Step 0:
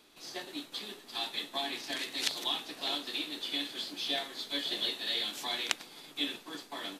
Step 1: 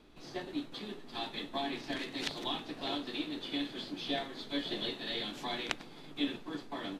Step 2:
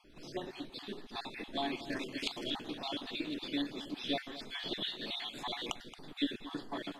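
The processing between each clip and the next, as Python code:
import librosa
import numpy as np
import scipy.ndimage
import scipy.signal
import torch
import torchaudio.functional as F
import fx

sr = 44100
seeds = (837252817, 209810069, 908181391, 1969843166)

y1 = fx.riaa(x, sr, side='playback')
y2 = fx.spec_dropout(y1, sr, seeds[0], share_pct=36)
y2 = y2 + 10.0 ** (-15.0 / 20.0) * np.pad(y2, (int(225 * sr / 1000.0), 0))[:len(y2)]
y2 = y2 * 10.0 ** (1.0 / 20.0)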